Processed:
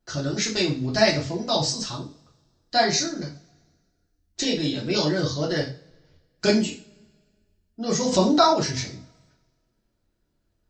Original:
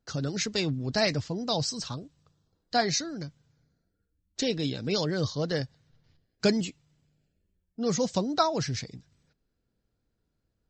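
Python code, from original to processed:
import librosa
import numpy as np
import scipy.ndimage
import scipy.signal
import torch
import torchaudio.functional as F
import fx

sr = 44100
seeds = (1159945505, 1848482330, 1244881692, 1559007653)

y = fx.rev_double_slope(x, sr, seeds[0], early_s=0.34, late_s=1.6, knee_db=-28, drr_db=-4.5)
y = fx.env_flatten(y, sr, amount_pct=50, at=(8.11, 8.53), fade=0.02)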